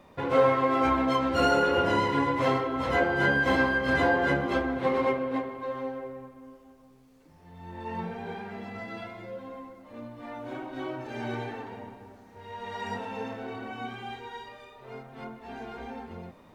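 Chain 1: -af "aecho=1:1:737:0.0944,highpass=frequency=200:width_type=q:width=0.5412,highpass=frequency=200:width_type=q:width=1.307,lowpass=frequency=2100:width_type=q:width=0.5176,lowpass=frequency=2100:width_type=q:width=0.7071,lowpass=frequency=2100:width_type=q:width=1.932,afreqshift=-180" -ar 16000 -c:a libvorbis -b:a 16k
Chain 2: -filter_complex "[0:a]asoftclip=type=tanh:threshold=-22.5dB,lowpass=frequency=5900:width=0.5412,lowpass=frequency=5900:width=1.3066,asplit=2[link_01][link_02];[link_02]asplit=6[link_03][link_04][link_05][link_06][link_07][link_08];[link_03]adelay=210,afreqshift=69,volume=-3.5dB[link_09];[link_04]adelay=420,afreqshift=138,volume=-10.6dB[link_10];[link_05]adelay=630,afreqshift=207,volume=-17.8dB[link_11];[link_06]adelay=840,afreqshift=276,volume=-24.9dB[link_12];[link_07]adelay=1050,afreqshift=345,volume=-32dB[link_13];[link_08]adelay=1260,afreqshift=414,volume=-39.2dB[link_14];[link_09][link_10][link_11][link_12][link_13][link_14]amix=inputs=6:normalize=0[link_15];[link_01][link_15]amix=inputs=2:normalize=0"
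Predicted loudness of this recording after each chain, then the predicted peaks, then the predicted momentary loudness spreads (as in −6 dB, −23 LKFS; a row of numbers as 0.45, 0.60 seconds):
−28.0, −29.5 LKFS; −10.5, −15.5 dBFS; 21, 17 LU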